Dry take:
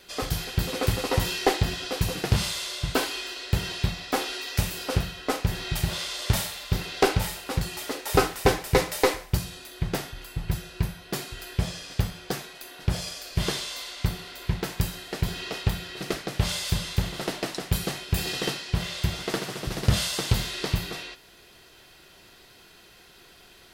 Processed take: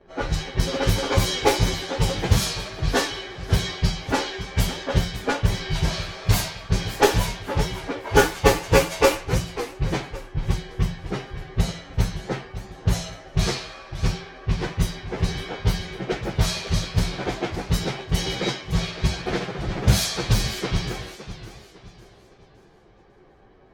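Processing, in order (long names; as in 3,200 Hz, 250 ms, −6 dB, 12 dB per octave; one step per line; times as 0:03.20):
partials spread apart or drawn together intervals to 108%
low-pass that shuts in the quiet parts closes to 890 Hz, open at −22.5 dBFS
feedback echo with a swinging delay time 557 ms, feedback 35%, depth 218 cents, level −13 dB
level +8 dB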